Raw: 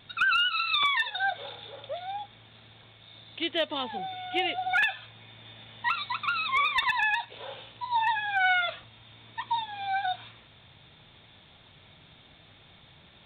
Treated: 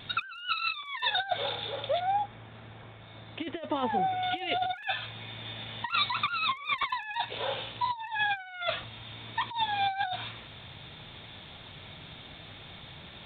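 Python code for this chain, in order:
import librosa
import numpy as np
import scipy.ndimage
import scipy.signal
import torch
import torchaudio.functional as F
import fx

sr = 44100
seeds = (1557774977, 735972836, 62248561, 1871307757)

y = fx.over_compress(x, sr, threshold_db=-33.0, ratio=-0.5)
y = fx.lowpass(y, sr, hz=1800.0, slope=12, at=(2.0, 4.23))
y = F.gain(torch.from_numpy(y), 3.0).numpy()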